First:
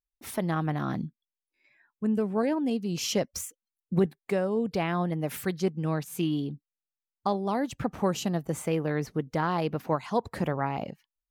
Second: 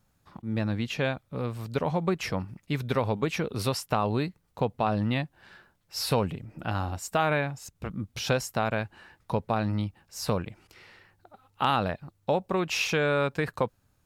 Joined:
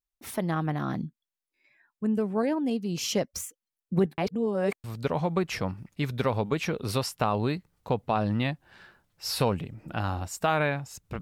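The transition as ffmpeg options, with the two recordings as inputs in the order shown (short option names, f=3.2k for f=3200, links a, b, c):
-filter_complex "[0:a]apad=whole_dur=11.21,atrim=end=11.21,asplit=2[a][b];[a]atrim=end=4.182[c];[b]atrim=start=4.178:end=4.842,asetpts=PTS-STARTPTS,areverse[d];[1:a]atrim=start=1.548:end=7.92[e];[c][d]acrossfade=d=0.004:c1=hsin:c2=hsin[f];[f][e]acrossfade=d=0.004:c1=hsin:c2=hsin"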